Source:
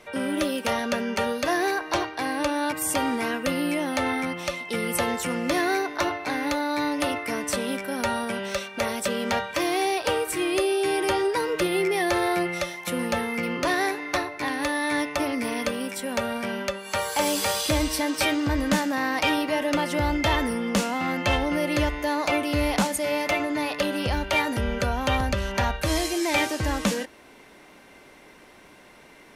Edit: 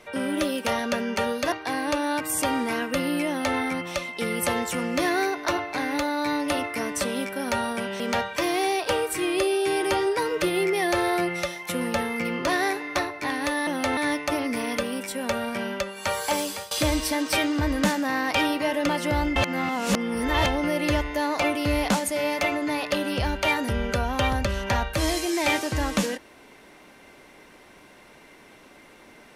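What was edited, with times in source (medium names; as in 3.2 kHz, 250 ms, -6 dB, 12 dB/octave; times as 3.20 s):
1.52–2.04 s: delete
3.80–4.10 s: copy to 14.85 s
8.52–9.18 s: delete
17.14–17.59 s: fade out, to -21.5 dB
20.24–21.34 s: reverse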